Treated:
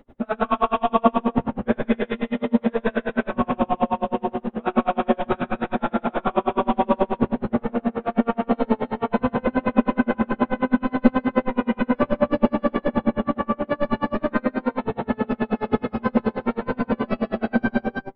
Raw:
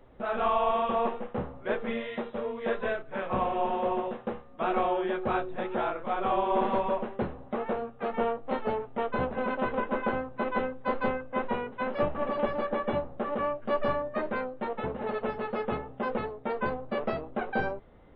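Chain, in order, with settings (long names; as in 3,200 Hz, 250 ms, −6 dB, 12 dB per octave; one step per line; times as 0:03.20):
parametric band 240 Hz +13 dB 0.58 octaves
reverb whose tail is shaped and stops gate 430 ms flat, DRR −3 dB
tremolo with a sine in dB 9.4 Hz, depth 35 dB
level +7 dB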